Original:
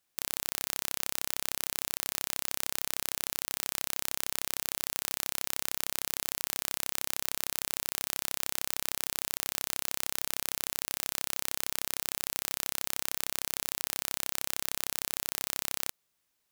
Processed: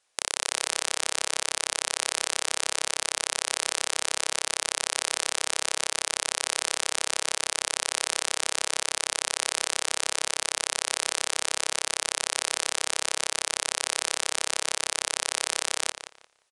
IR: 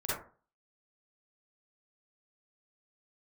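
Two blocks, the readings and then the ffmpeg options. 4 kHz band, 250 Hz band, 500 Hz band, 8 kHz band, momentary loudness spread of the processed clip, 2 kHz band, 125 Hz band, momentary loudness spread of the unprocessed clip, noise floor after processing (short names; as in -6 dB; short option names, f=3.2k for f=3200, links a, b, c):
+9.0 dB, +0.5 dB, +10.5 dB, +8.0 dB, 0 LU, +9.5 dB, -2.5 dB, 0 LU, -54 dBFS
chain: -filter_complex "[0:a]lowshelf=f=350:t=q:w=1.5:g=-10.5,asplit=2[a][b];[b]adelay=175,lowpass=f=4.6k:p=1,volume=-9dB,asplit=2[c][d];[d]adelay=175,lowpass=f=4.6k:p=1,volume=0.22,asplit=2[e][f];[f]adelay=175,lowpass=f=4.6k:p=1,volume=0.22[g];[c][e][g]amix=inputs=3:normalize=0[h];[a][h]amix=inputs=2:normalize=0,aresample=22050,aresample=44100,volume=8.5dB"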